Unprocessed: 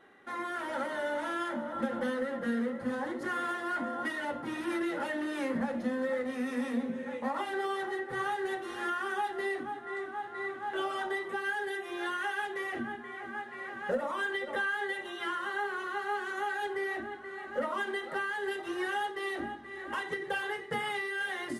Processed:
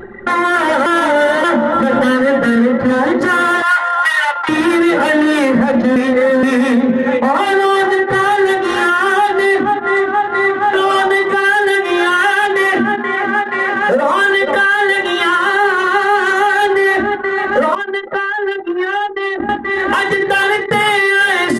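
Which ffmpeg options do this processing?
ffmpeg -i in.wav -filter_complex "[0:a]asettb=1/sr,asplit=3[link_01][link_02][link_03];[link_01]atrim=end=1.944[link_04];[link_02]atrim=start=1.94:end=2.56,asetpts=PTS-STARTPTS,afade=type=in:duration=0.004:curve=qsin,afade=type=out:start_time=0.616:duration=0.004:curve=qsin,aecho=1:1:7.1:0.65,atrim=end_sample=27342[link_05];[link_03]atrim=start=2.556[link_06];[link_04][link_05]acrossfade=duration=0.004:curve1=hsin:curve2=qsin[link_07];[link_07][link_06]acrossfade=duration=0.004:curve1=qsin:curve2=hsin,asettb=1/sr,asplit=3[link_08][link_09][link_10];[link_08]atrim=end=3.624[link_11];[link_09]atrim=start=3.62:end=4.49,asetpts=PTS-STARTPTS,afade=type=in:duration=0.004:curve=qsin,afade=type=out:start_time=0.866:duration=0.004:curve=qsin,highpass=frequency=890:width=0.5412,highpass=frequency=890:width=1.3066[link_12];[link_10]atrim=start=4.486[link_13];[link_11][link_12]acrossfade=duration=0.004:curve1=hsin:curve2=qsin[link_14];[link_14][link_13]acrossfade=duration=0.004:curve1=qsin:curve2=hsin,asettb=1/sr,asplit=3[link_15][link_16][link_17];[link_15]atrim=end=12.654[link_18];[link_16]atrim=start=12.65:end=14.23,asetpts=PTS-STARTPTS,afade=type=in:duration=0.004:curve=qsin,afade=type=out:start_time=1.576:duration=0.004:curve=qsin,highpass=150[link_19];[link_17]atrim=start=14.226[link_20];[link_18][link_19]acrossfade=duration=0.004:curve1=hsin:curve2=qsin[link_21];[link_21][link_20]acrossfade=duration=0.004:curve1=qsin:curve2=hsin,asplit=7[link_22][link_23][link_24][link_25][link_26][link_27][link_28];[link_22]atrim=end=0.862[link_29];[link_23]atrim=start=0.858:end=1.442,asetpts=PTS-STARTPTS,areverse[link_30];[link_24]atrim=start=1.438:end=5.962[link_31];[link_25]atrim=start=5.958:end=6.432,asetpts=PTS-STARTPTS,areverse[link_32];[link_26]atrim=start=6.428:end=17.752[link_33];[link_27]atrim=start=17.748:end=19.492,asetpts=PTS-STARTPTS,volume=-11dB[link_34];[link_28]atrim=start=19.488[link_35];[link_29][link_30]acrossfade=duration=0.004:curve1=hsin:curve2=hsin[link_36];[link_36][link_31]acrossfade=duration=0.004:curve1=hsin:curve2=hsin[link_37];[link_37][link_32]acrossfade=duration=0.004:curve1=hsin:curve2=hsin[link_38];[link_38][link_33]acrossfade=duration=0.004:curve1=hsin:curve2=hsin[link_39];[link_39][link_34]acrossfade=duration=0.004:curve1=hsin:curve2=hsin[link_40];[link_40][link_35]acrossfade=duration=0.004:curve1=hsin:curve2=hsin,anlmdn=0.0251,acompressor=mode=upward:threshold=-34dB:ratio=2.5,alimiter=level_in=27dB:limit=-1dB:release=50:level=0:latency=1,volume=-3.5dB" out.wav

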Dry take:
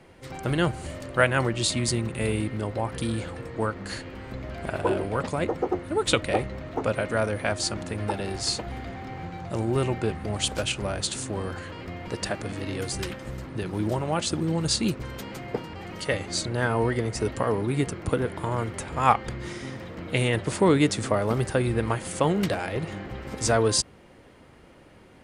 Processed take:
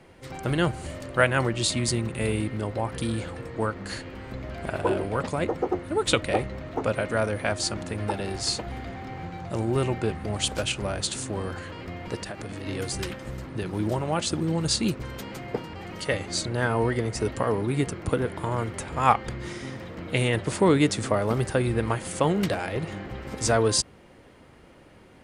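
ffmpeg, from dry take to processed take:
ffmpeg -i in.wav -filter_complex "[0:a]asettb=1/sr,asplit=3[link_01][link_02][link_03];[link_01]atrim=end=12.224[link_04];[link_02]atrim=start=12.22:end=12.65,asetpts=PTS-STARTPTS,afade=type=in:duration=0.004:curve=qsin,afade=type=out:start_time=0.426:duration=0.004:curve=qsin,acompressor=threshold=-31dB:ratio=6:attack=3.2:release=140:knee=1:detection=peak[link_05];[link_03]atrim=start=12.646[link_06];[link_04][link_05]acrossfade=duration=0.004:curve1=hsin:curve2=qsin[link_07];[link_07][link_06]acrossfade=duration=0.004:curve1=qsin:curve2=hsin" out.wav

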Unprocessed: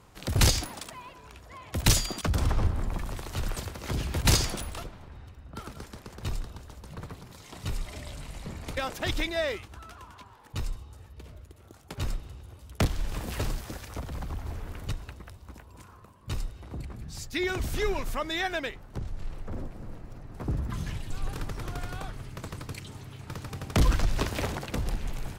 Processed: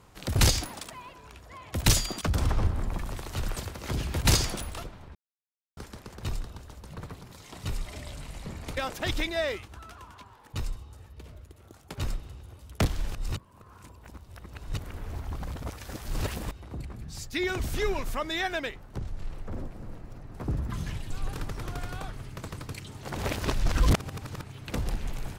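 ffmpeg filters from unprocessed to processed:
ffmpeg -i in.wav -filter_complex "[0:a]asplit=7[link_01][link_02][link_03][link_04][link_05][link_06][link_07];[link_01]atrim=end=5.15,asetpts=PTS-STARTPTS,afade=type=out:start_time=5.146:duration=0.004:curve=hsin[link_08];[link_02]atrim=start=5.15:end=5.77,asetpts=PTS-STARTPTS,volume=0[link_09];[link_03]atrim=start=5.77:end=13.152,asetpts=PTS-STARTPTS,afade=type=in:duration=0.004:curve=hsin[link_10];[link_04]atrim=start=13.148:end=16.512,asetpts=PTS-STARTPTS,areverse[link_11];[link_05]atrim=start=16.508:end=23.032[link_12];[link_06]atrim=start=23.028:end=24.682,asetpts=PTS-STARTPTS,areverse[link_13];[link_07]atrim=start=24.678[link_14];[link_08][link_09][link_10]concat=n=3:v=0:a=1[link_15];[link_15][link_11]acrossfade=duration=0.004:curve1=hsin:curve2=hsin[link_16];[link_16][link_12]acrossfade=duration=0.004:curve1=hsin:curve2=hsin[link_17];[link_17][link_13]acrossfade=duration=0.004:curve1=hsin:curve2=hsin[link_18];[link_18][link_14]acrossfade=duration=0.004:curve1=hsin:curve2=hsin" out.wav

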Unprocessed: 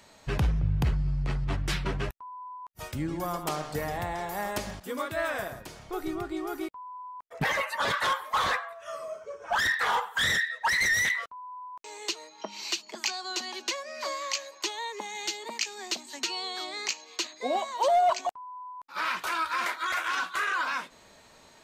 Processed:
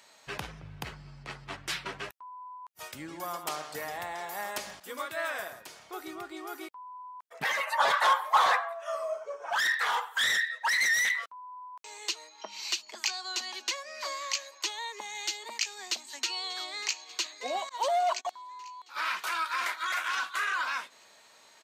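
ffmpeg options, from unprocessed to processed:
ffmpeg -i in.wav -filter_complex "[0:a]asettb=1/sr,asplit=3[link_01][link_02][link_03];[link_01]atrim=end=7.674[link_04];[link_02]atrim=start=7.67:end=9.5,asetpts=PTS-STARTPTS,afade=type=in:duration=0.004:curve=qsin,afade=type=out:start_time=1.826:duration=0.004:curve=qsin,equalizer=frequency=770:width_type=o:width=1.1:gain=12.5[link_05];[link_03]atrim=start=9.496[link_06];[link_04][link_05]acrossfade=duration=0.004:curve1=hsin:curve2=qsin[link_07];[link_07][link_06]acrossfade=duration=0.004:curve1=qsin:curve2=hsin,asplit=2[link_08][link_09];[link_09]afade=type=in:start_time=15.9:duration=0.01,afade=type=out:start_time=17.08:duration=0.01,aecho=0:1:590|1180|1770|2360|2950|3540|4130|4720:0.133352|0.0933465|0.0653426|0.0457398|0.0320178|0.0224125|0.0156887|0.0109821[link_10];[link_08][link_10]amix=inputs=2:normalize=0,asettb=1/sr,asplit=3[link_11][link_12][link_13];[link_11]atrim=end=17.694[link_14];[link_12]atrim=start=17.69:end=18.25,asetpts=PTS-STARTPTS,afade=type=in:duration=0.004:curve=qsin,afade=type=out:start_time=0.556:duration=0.004:curve=qsin,agate=range=-29dB:threshold=-38dB:ratio=16:release=100:detection=peak[link_15];[link_13]atrim=start=18.246[link_16];[link_14][link_15]acrossfade=duration=0.004:curve1=hsin:curve2=qsin[link_17];[link_17][link_16]acrossfade=duration=0.004:curve1=qsin:curve2=hsin,highpass=frequency=980:poles=1" out.wav

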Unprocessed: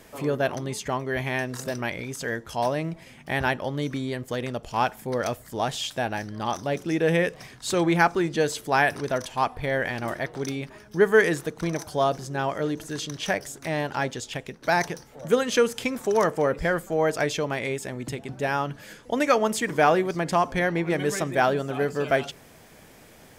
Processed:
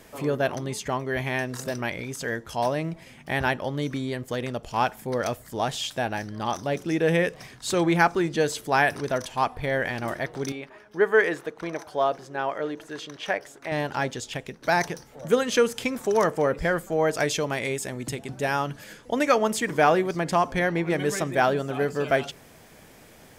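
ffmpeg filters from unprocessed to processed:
ffmpeg -i in.wav -filter_complex "[0:a]asettb=1/sr,asplit=3[link_01][link_02][link_03];[link_01]atrim=end=10.524[link_04];[link_02]atrim=start=10.52:end=13.72,asetpts=PTS-STARTPTS,afade=type=in:duration=0.004:curve=qsin,afade=type=out:start_time=3.196:duration=0.004:curve=qsin,bass=frequency=250:gain=-14,treble=frequency=4000:gain=-12[link_05];[link_03]atrim=start=13.716[link_06];[link_04][link_05]acrossfade=duration=0.004:curve1=hsin:curve2=qsin[link_07];[link_07][link_06]acrossfade=duration=0.004:curve1=qsin:curve2=hsin,asettb=1/sr,asplit=3[link_08][link_09][link_10];[link_08]atrim=end=17.154[link_11];[link_09]atrim=start=17.15:end=18.84,asetpts=PTS-STARTPTS,afade=type=in:duration=0.004:curve=qsin,afade=type=out:start_time=1.686:duration=0.004:curve=qsin,equalizer=frequency=10000:width=0.45:gain=6[link_12];[link_10]atrim=start=18.836[link_13];[link_11][link_12]acrossfade=duration=0.004:curve1=hsin:curve2=qsin[link_14];[link_14][link_13]acrossfade=duration=0.004:curve1=qsin:curve2=hsin" out.wav

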